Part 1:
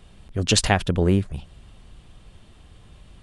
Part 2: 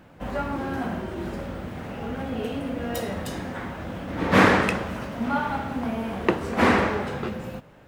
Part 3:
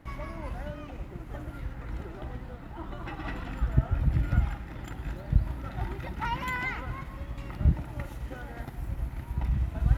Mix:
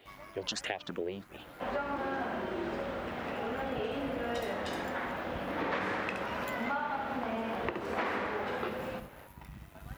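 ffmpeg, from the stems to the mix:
-filter_complex "[0:a]acompressor=threshold=-24dB:ratio=3,asplit=2[a][b];[b]afreqshift=2.9[c];[a][c]amix=inputs=2:normalize=1,volume=1dB[d];[1:a]adelay=1400,volume=1dB,asplit=2[e][f];[f]volume=-14dB[g];[2:a]highshelf=f=5k:g=-10,tremolo=f=98:d=0.571,aemphasis=mode=production:type=riaa,volume=-5.5dB[h];[d][e]amix=inputs=2:normalize=0,highpass=380,lowpass=4.1k,alimiter=limit=-12dB:level=0:latency=1:release=411,volume=0dB[i];[g]aecho=0:1:70:1[j];[h][i][j]amix=inputs=3:normalize=0,acompressor=threshold=-31dB:ratio=6"

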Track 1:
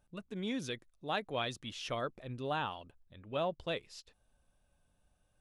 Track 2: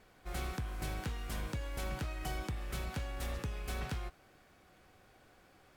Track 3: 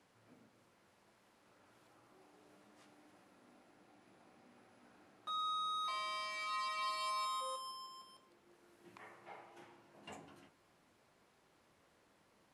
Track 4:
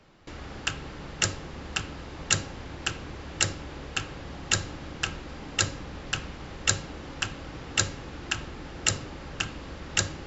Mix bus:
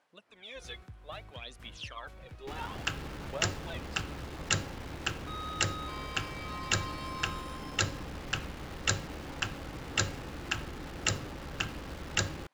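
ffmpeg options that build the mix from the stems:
-filter_complex "[0:a]highpass=710,alimiter=level_in=6dB:limit=-24dB:level=0:latency=1,volume=-6dB,aphaser=in_gain=1:out_gain=1:delay=2.4:decay=0.74:speed=0.61:type=sinusoidal,volume=-3dB[a];[1:a]equalizer=f=99:w=1.5:g=8.5,adelay=300,volume=-14.5dB[b];[2:a]highpass=f=770:p=1,volume=-0.5dB[c];[3:a]acrusher=bits=8:dc=4:mix=0:aa=0.000001,adelay=2200,volume=-2dB[d];[a][b][c][d]amix=inputs=4:normalize=0,highshelf=f=5.6k:g=-8.5"

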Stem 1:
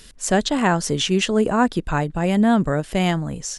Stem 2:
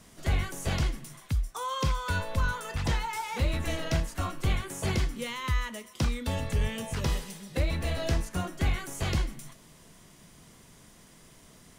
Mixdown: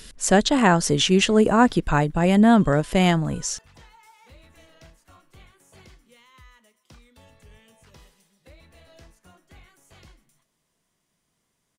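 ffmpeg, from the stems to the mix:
-filter_complex "[0:a]volume=1.5dB[a];[1:a]lowshelf=f=270:g=-6.5,adelay=900,volume=-18.5dB[b];[a][b]amix=inputs=2:normalize=0"

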